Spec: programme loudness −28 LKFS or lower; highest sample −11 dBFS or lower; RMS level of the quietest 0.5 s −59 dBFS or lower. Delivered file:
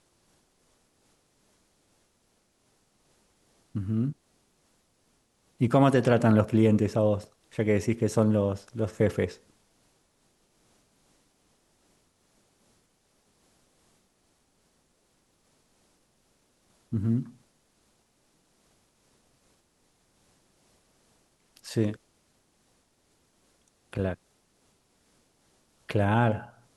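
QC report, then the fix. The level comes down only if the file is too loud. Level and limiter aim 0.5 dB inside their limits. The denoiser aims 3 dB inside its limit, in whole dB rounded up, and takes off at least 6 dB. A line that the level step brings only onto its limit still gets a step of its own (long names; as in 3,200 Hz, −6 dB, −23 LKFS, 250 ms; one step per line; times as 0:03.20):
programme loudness −26.5 LKFS: out of spec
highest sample −8.0 dBFS: out of spec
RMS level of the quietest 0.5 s −70 dBFS: in spec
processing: level −2 dB
brickwall limiter −11.5 dBFS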